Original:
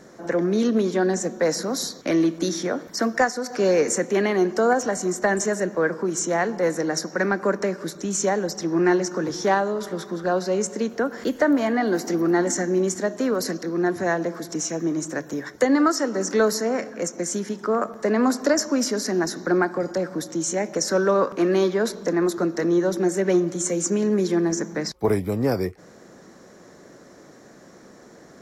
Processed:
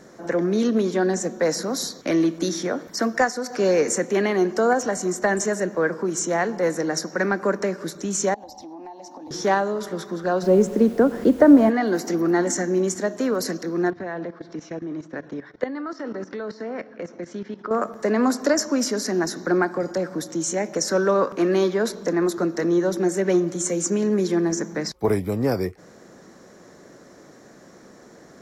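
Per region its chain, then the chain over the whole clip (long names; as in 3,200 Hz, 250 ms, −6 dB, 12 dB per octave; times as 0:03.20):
0:08.34–0:09.31: drawn EQ curve 100 Hz 0 dB, 170 Hz −26 dB, 270 Hz +2 dB, 400 Hz −23 dB, 830 Hz +8 dB, 1,400 Hz −27 dB, 2,400 Hz −14 dB, 4,000 Hz −7 dB, 7,800 Hz −17 dB, 12,000 Hz −9 dB + downward compressor 10 to 1, threshold −35 dBFS
0:10.42–0:11.69: tilt shelving filter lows +9.5 dB, about 1,200 Hz + background noise pink −48 dBFS
0:13.90–0:17.71: low-pass filter 4,100 Hz 24 dB per octave + output level in coarse steps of 15 dB
whole clip: no processing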